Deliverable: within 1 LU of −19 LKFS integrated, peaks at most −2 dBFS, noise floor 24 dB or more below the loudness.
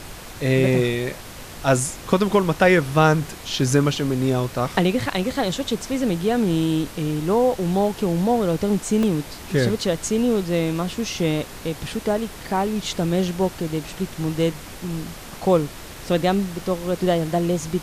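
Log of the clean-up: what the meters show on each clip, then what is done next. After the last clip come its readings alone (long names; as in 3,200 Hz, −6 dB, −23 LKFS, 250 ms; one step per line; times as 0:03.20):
number of dropouts 2; longest dropout 1.8 ms; background noise floor −38 dBFS; target noise floor −46 dBFS; integrated loudness −22.0 LKFS; sample peak −3.0 dBFS; target loudness −19.0 LKFS
→ repair the gap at 0:09.03/0:14.54, 1.8 ms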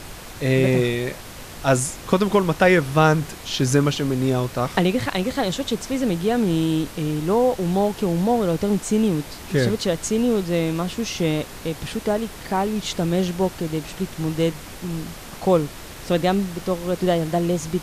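number of dropouts 0; background noise floor −38 dBFS; target noise floor −46 dBFS
→ noise reduction from a noise print 8 dB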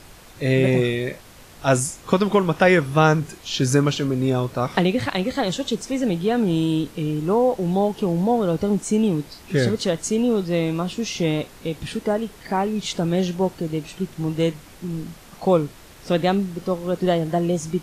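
background noise floor −45 dBFS; target noise floor −46 dBFS
→ noise reduction from a noise print 6 dB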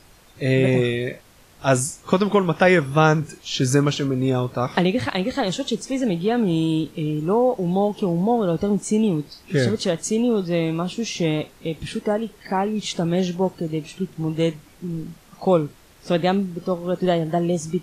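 background noise floor −51 dBFS; integrated loudness −22.0 LKFS; sample peak −3.5 dBFS; target loudness −19.0 LKFS
→ level +3 dB
brickwall limiter −2 dBFS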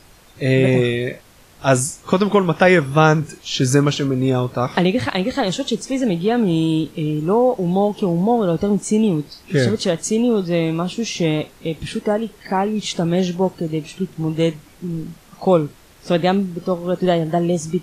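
integrated loudness −19.0 LKFS; sample peak −2.0 dBFS; background noise floor −48 dBFS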